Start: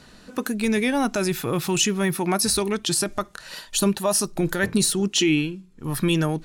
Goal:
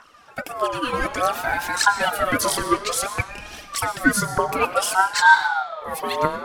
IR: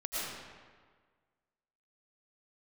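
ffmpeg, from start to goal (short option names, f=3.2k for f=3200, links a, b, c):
-filter_complex "[0:a]equalizer=f=550:t=o:w=2.4:g=6.5,dynaudnorm=f=450:g=5:m=7dB,aphaser=in_gain=1:out_gain=1:delay=3.3:decay=0.74:speed=1.6:type=triangular,asplit=2[a][b];[1:a]atrim=start_sample=2205[c];[b][c]afir=irnorm=-1:irlink=0,volume=-12.5dB[d];[a][d]amix=inputs=2:normalize=0,aeval=exprs='val(0)*sin(2*PI*1000*n/s+1000*0.25/0.57*sin(2*PI*0.57*n/s))':c=same,volume=-8dB"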